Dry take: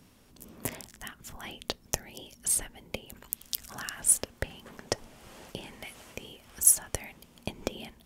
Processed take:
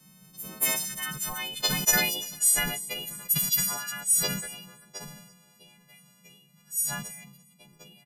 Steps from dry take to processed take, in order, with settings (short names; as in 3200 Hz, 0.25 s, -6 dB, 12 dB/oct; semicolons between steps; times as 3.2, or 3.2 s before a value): frequency quantiser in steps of 3 st; Doppler pass-by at 1.8, 13 m/s, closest 9.7 m; band noise 130–200 Hz -53 dBFS; bell 75 Hz -13.5 dB 2.6 oct; feedback echo 0.341 s, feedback 27%, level -22 dB; vocal rider within 4 dB 0.5 s; de-hum 129.8 Hz, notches 2; sustainer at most 51 dB/s